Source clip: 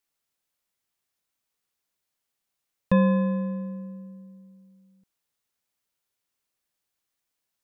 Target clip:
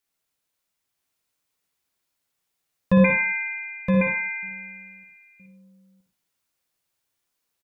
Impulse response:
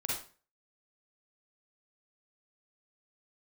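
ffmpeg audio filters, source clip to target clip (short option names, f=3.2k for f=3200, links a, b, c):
-filter_complex "[0:a]asettb=1/sr,asplit=3[a][b][c];[a]atrim=end=3.044[d];[b]atrim=start=3.04:end=4.43,asetpts=PTS-STARTPTS,afade=t=in:d=0.004:c=qsin,afade=t=out:st=1.386:d=0.004:c=qsin,lowpass=f=2.2k:t=q:w=0.5098,lowpass=f=2.2k:t=q:w=0.6013,lowpass=f=2.2k:t=q:w=0.9,lowpass=f=2.2k:t=q:w=2.563,afreqshift=-2600[e];[c]atrim=start=4.426[f];[d][e]acrossfade=d=0.004:c1=hsin:c2=qsin[g];[g][f]acrossfade=d=0.004:c1=qsin:c2=hsin,aecho=1:1:969:0.631,asplit=2[h][i];[1:a]atrim=start_sample=2205,adelay=11[j];[i][j]afir=irnorm=-1:irlink=0,volume=-4.5dB[k];[h][k]amix=inputs=2:normalize=0"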